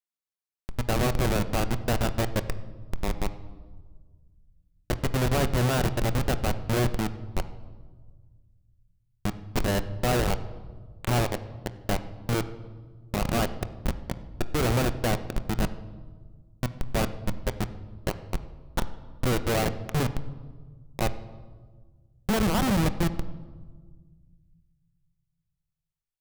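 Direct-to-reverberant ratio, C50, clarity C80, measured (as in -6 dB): 10.0 dB, 14.0 dB, 16.0 dB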